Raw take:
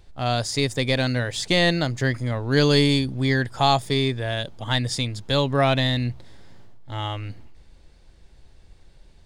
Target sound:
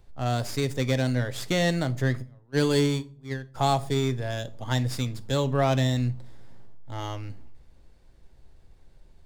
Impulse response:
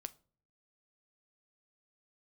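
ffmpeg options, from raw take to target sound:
-filter_complex "[0:a]asplit=3[a][b][c];[a]afade=t=out:st=2.21:d=0.02[d];[b]agate=range=-29dB:threshold=-18dB:ratio=16:detection=peak,afade=t=in:st=2.21:d=0.02,afade=t=out:st=3.54:d=0.02[e];[c]afade=t=in:st=3.54:d=0.02[f];[d][e][f]amix=inputs=3:normalize=0,acrossover=split=430|1600[g][h][i];[i]aeval=exprs='max(val(0),0)':c=same[j];[g][h][j]amix=inputs=3:normalize=0[k];[1:a]atrim=start_sample=2205,asetrate=41013,aresample=44100[l];[k][l]afir=irnorm=-1:irlink=0"

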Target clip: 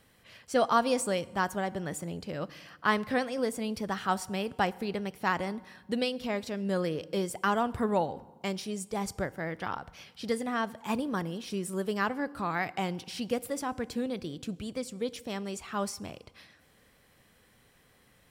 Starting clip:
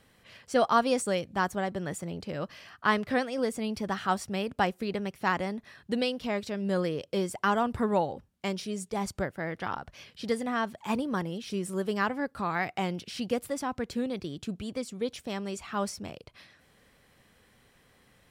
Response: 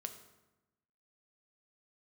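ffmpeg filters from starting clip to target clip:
-filter_complex "[0:a]highshelf=f=11k:g=7,asplit=2[a][b];[1:a]atrim=start_sample=2205,asetrate=32193,aresample=44100[c];[b][c]afir=irnorm=-1:irlink=0,volume=-8.5dB[d];[a][d]amix=inputs=2:normalize=0,volume=-3.5dB"

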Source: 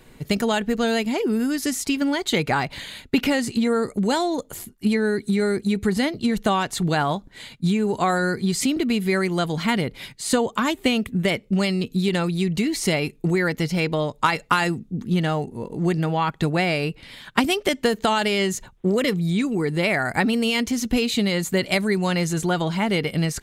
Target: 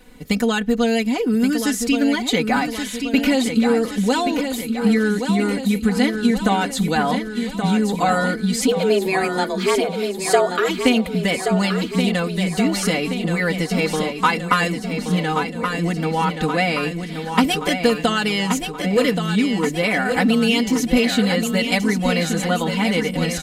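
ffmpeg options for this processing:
-filter_complex "[0:a]aecho=1:1:4:0.96,asplit=3[a][b][c];[a]afade=t=out:st=8.67:d=0.02[d];[b]afreqshift=190,afade=t=in:st=8.67:d=0.02,afade=t=out:st=10.68:d=0.02[e];[c]afade=t=in:st=10.68:d=0.02[f];[d][e][f]amix=inputs=3:normalize=0,aecho=1:1:1126|2252|3378|4504|5630|6756|7882:0.447|0.259|0.15|0.0872|0.0505|0.0293|0.017,volume=-1dB"

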